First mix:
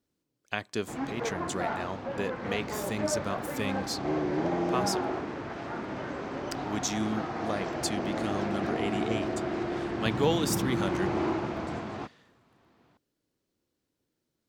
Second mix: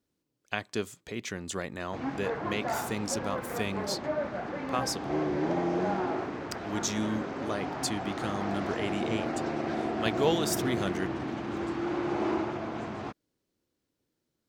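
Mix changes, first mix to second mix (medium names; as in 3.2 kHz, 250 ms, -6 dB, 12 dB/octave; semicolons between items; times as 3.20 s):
first sound: entry +1.05 s; second sound -7.0 dB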